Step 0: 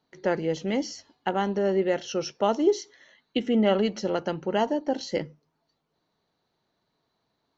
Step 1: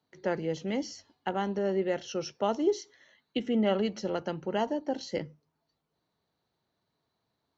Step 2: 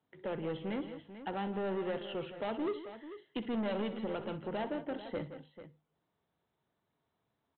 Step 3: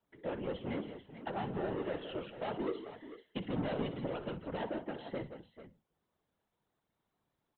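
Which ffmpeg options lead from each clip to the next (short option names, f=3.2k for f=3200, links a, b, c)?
-filter_complex "[0:a]highpass=57,acrossover=split=110[a][b];[a]acontrast=88[c];[c][b]amix=inputs=2:normalize=0,volume=-5dB"
-af "aresample=8000,asoftclip=type=tanh:threshold=-29.5dB,aresample=44100,aecho=1:1:62|168|442:0.2|0.237|0.237,volume=-2dB"
-af "afftfilt=real='hypot(re,im)*cos(2*PI*random(0))':imag='hypot(re,im)*sin(2*PI*random(1))':win_size=512:overlap=0.75,volume=4.5dB"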